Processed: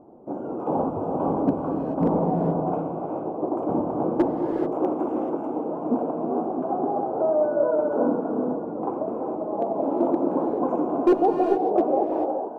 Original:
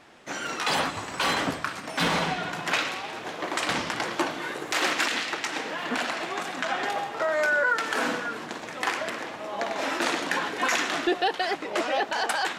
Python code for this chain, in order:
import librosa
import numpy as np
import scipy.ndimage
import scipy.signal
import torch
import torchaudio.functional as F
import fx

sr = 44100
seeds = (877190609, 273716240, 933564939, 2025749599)

y = fx.fade_out_tail(x, sr, length_s=0.68)
y = scipy.signal.sosfilt(scipy.signal.cheby2(4, 40, 1700.0, 'lowpass', fs=sr, output='sos'), y)
y = fx.peak_eq(y, sr, hz=310.0, db=7.5, octaves=1.5)
y = np.clip(10.0 ** (15.0 / 20.0) * y, -1.0, 1.0) / 10.0 ** (15.0 / 20.0)
y = fx.rev_gated(y, sr, seeds[0], gate_ms=460, shape='rising', drr_db=2.5)
y = F.gain(torch.from_numpy(y), 2.5).numpy()